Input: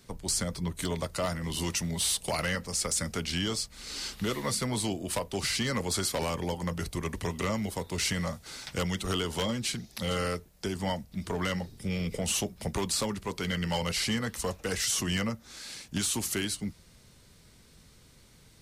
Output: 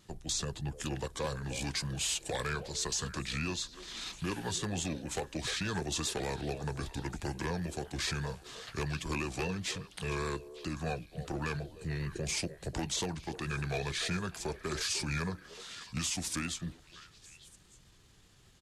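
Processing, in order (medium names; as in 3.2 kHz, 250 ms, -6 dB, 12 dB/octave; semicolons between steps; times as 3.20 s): vibrato 5 Hz 48 cents; pitch shift -3.5 st; repeats whose band climbs or falls 301 ms, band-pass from 490 Hz, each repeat 1.4 oct, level -9.5 dB; trim -4.5 dB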